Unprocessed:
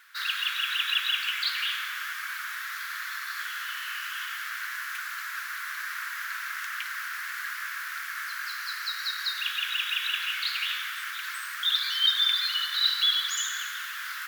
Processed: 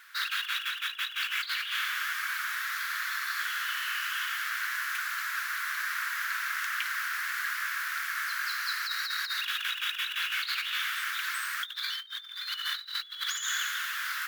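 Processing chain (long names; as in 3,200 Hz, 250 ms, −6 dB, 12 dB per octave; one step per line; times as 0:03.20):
compressor whose output falls as the input rises −32 dBFS, ratio −0.5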